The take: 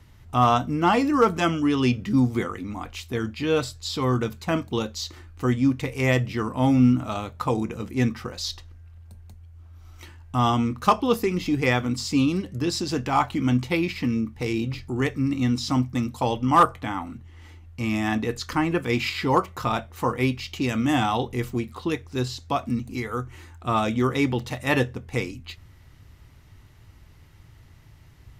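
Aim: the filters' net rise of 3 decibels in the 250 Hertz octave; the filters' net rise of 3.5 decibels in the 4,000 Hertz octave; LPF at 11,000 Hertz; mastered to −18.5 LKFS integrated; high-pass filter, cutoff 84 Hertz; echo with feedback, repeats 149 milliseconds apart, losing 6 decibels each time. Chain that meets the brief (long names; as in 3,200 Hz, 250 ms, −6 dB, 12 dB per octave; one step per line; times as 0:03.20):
high-pass filter 84 Hz
low-pass filter 11,000 Hz
parametric band 250 Hz +3.5 dB
parametric band 4,000 Hz +4.5 dB
repeating echo 149 ms, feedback 50%, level −6 dB
level +3 dB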